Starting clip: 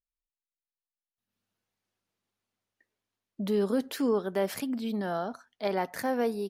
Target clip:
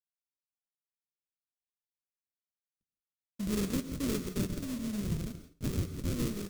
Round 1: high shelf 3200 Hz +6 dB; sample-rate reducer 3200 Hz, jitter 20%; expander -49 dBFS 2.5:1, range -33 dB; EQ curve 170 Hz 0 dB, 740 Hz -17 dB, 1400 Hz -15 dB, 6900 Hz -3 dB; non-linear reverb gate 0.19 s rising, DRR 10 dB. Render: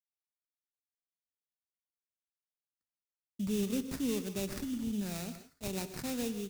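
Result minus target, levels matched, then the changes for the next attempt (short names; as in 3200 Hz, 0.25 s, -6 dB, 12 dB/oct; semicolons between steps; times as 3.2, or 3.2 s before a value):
sample-rate reducer: distortion -19 dB
change: sample-rate reducer 840 Hz, jitter 20%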